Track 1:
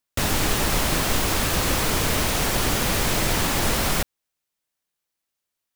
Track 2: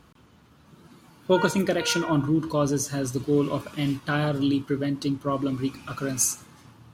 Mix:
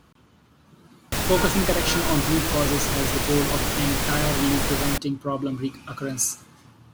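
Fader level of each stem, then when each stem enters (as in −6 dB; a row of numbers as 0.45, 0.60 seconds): −2.5, −0.5 decibels; 0.95, 0.00 seconds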